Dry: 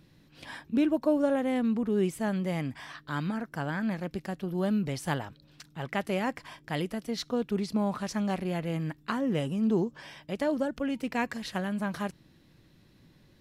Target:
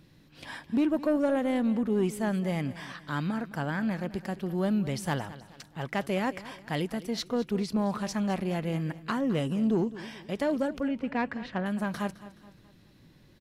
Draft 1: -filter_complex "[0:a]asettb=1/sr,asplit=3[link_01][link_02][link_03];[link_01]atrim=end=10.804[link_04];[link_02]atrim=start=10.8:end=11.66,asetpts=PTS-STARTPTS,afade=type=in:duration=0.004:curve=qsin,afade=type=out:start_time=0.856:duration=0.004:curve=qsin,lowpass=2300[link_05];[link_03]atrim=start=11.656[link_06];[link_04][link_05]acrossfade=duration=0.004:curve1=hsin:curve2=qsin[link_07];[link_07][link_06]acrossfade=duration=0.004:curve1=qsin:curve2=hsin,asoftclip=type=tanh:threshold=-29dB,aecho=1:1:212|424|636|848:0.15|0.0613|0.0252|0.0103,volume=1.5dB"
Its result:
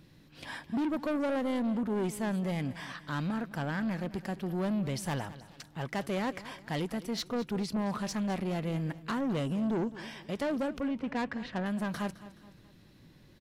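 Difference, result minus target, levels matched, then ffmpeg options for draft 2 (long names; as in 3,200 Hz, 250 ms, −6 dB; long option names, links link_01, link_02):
soft clipping: distortion +11 dB
-filter_complex "[0:a]asettb=1/sr,asplit=3[link_01][link_02][link_03];[link_01]atrim=end=10.804[link_04];[link_02]atrim=start=10.8:end=11.66,asetpts=PTS-STARTPTS,afade=type=in:duration=0.004:curve=qsin,afade=type=out:start_time=0.856:duration=0.004:curve=qsin,lowpass=2300[link_05];[link_03]atrim=start=11.656[link_06];[link_04][link_05]acrossfade=duration=0.004:curve1=hsin:curve2=qsin[link_07];[link_07][link_06]acrossfade=duration=0.004:curve1=qsin:curve2=hsin,asoftclip=type=tanh:threshold=-19.5dB,aecho=1:1:212|424|636|848:0.15|0.0613|0.0252|0.0103,volume=1.5dB"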